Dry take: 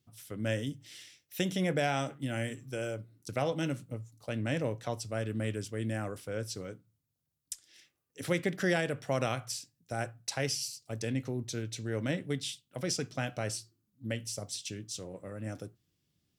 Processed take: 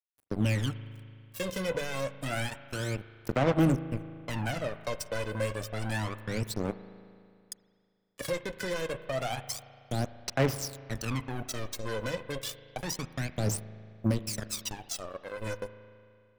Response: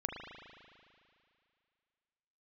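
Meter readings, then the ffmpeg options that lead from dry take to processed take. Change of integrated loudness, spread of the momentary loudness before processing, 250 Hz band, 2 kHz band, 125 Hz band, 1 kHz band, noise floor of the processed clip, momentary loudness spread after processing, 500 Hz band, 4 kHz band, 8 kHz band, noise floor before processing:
+2.0 dB, 13 LU, +2.0 dB, +1.0 dB, +3.5 dB, +2.0 dB, −67 dBFS, 11 LU, +1.5 dB, +0.5 dB, +0.5 dB, −81 dBFS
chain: -filter_complex "[0:a]highpass=frequency=47:poles=1,bandreject=frequency=50:width_type=h:width=6,bandreject=frequency=100:width_type=h:width=6,bandreject=frequency=150:width_type=h:width=6,acrossover=split=330[link_01][link_02];[link_02]acompressor=threshold=-36dB:ratio=2.5[link_03];[link_01][link_03]amix=inputs=2:normalize=0,alimiter=level_in=3.5dB:limit=-24dB:level=0:latency=1:release=258,volume=-3.5dB,acrusher=bits=5:mix=0:aa=0.5,aphaser=in_gain=1:out_gain=1:delay=2:decay=0.73:speed=0.29:type=sinusoidal,asplit=2[link_04][link_05];[1:a]atrim=start_sample=2205[link_06];[link_05][link_06]afir=irnorm=-1:irlink=0,volume=-10.5dB[link_07];[link_04][link_07]amix=inputs=2:normalize=0"

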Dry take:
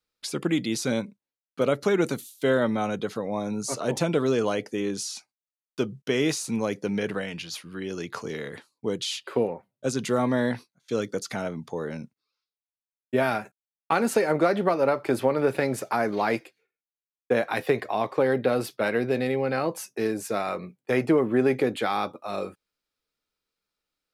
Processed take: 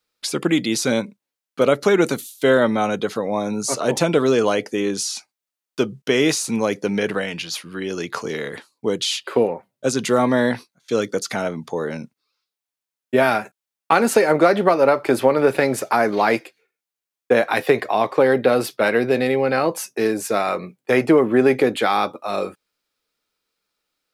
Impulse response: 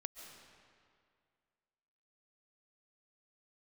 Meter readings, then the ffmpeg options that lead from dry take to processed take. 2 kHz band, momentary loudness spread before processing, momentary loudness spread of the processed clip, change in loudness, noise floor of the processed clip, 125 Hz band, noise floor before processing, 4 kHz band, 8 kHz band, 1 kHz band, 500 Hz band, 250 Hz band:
+8.0 dB, 11 LU, 11 LU, +7.0 dB, below −85 dBFS, +3.5 dB, below −85 dBFS, +8.0 dB, +8.0 dB, +7.5 dB, +7.0 dB, +6.0 dB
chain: -af "lowshelf=frequency=150:gain=-9,volume=8dB"

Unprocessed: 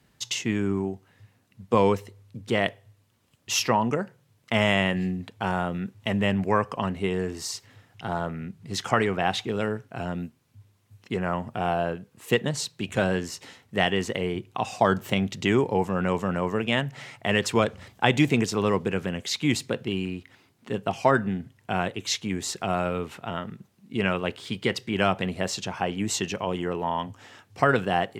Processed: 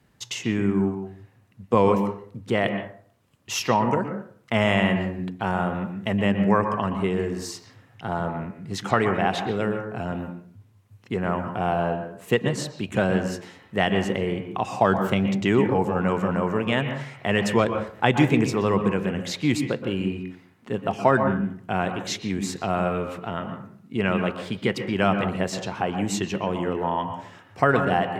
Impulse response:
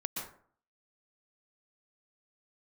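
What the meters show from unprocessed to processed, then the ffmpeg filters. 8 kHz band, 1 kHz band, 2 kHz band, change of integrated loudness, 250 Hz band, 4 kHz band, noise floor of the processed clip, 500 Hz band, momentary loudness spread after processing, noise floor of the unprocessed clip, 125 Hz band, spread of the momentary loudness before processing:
−3.0 dB, +2.5 dB, +0.5 dB, +2.0 dB, +3.5 dB, −2.5 dB, −57 dBFS, +2.5 dB, 12 LU, −65 dBFS, +3.0 dB, 11 LU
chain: -filter_complex "[0:a]asplit=2[link_01][link_02];[1:a]atrim=start_sample=2205,lowpass=2700[link_03];[link_02][link_03]afir=irnorm=-1:irlink=0,volume=-2.5dB[link_04];[link_01][link_04]amix=inputs=2:normalize=0,volume=-2.5dB"

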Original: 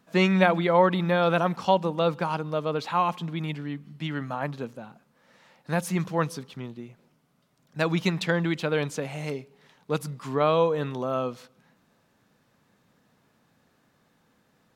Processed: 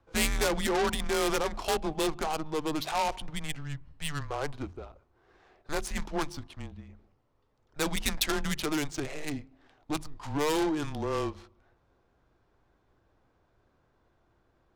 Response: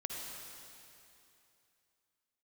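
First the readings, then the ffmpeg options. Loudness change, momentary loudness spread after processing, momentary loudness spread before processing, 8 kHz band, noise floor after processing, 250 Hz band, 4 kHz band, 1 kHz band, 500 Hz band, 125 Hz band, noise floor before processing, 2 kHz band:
−5.5 dB, 14 LU, 16 LU, +8.0 dB, −71 dBFS, −5.5 dB, +1.0 dB, −6.5 dB, −7.0 dB, −9.5 dB, −67 dBFS, −4.0 dB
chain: -af "bandreject=frequency=60:width_type=h:width=6,bandreject=frequency=120:width_type=h:width=6,bandreject=frequency=180:width_type=h:width=6,bandreject=frequency=240:width_type=h:width=6,bandreject=frequency=300:width_type=h:width=6,bandreject=frequency=360:width_type=h:width=6,afreqshift=-150,adynamicsmooth=sensitivity=7.5:basefreq=1500,asoftclip=type=tanh:threshold=-23.5dB,bass=frequency=250:gain=-2,treble=frequency=4000:gain=15"

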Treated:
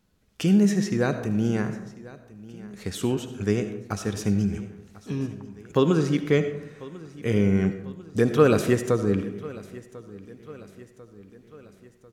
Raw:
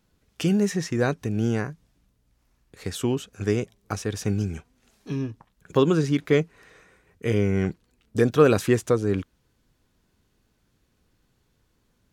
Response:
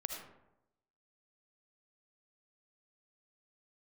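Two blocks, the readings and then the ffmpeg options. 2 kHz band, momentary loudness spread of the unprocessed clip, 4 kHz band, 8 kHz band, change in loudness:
−1.0 dB, 13 LU, −1.0 dB, −1.0 dB, +0.5 dB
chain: -filter_complex "[0:a]equalizer=frequency=200:width_type=o:width=0.25:gain=6,aecho=1:1:1045|2090|3135|4180:0.106|0.0572|0.0309|0.0167,asplit=2[link_01][link_02];[1:a]atrim=start_sample=2205[link_03];[link_02][link_03]afir=irnorm=-1:irlink=0,volume=0.5dB[link_04];[link_01][link_04]amix=inputs=2:normalize=0,volume=-6.5dB"

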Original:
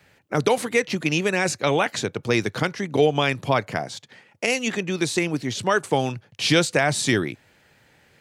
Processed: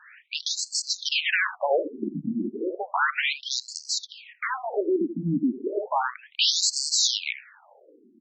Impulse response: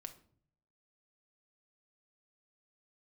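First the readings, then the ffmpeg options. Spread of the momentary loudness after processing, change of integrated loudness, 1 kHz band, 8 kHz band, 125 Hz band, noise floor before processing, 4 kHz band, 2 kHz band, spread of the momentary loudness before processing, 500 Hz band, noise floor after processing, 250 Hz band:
10 LU, −3.0 dB, −4.0 dB, +2.5 dB, −11.5 dB, −59 dBFS, +2.5 dB, −4.0 dB, 8 LU, −7.5 dB, −57 dBFS, −5.0 dB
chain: -filter_complex "[0:a]asplit=2[link_01][link_02];[link_02]adelay=80,highpass=300,lowpass=3400,asoftclip=type=hard:threshold=-16.5dB,volume=-17dB[link_03];[link_01][link_03]amix=inputs=2:normalize=0,aeval=exprs='0.473*sin(PI/2*6.31*val(0)/0.473)':channel_layout=same,afftfilt=real='re*between(b*sr/1024,230*pow(6000/230,0.5+0.5*sin(2*PI*0.33*pts/sr))/1.41,230*pow(6000/230,0.5+0.5*sin(2*PI*0.33*pts/sr))*1.41)':imag='im*between(b*sr/1024,230*pow(6000/230,0.5+0.5*sin(2*PI*0.33*pts/sr))/1.41,230*pow(6000/230,0.5+0.5*sin(2*PI*0.33*pts/sr))*1.41)':win_size=1024:overlap=0.75,volume=-8dB"

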